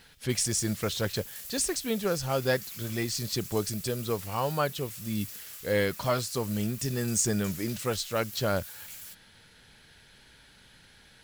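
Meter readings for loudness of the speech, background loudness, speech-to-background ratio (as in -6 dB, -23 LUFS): -30.5 LUFS, -41.0 LUFS, 10.5 dB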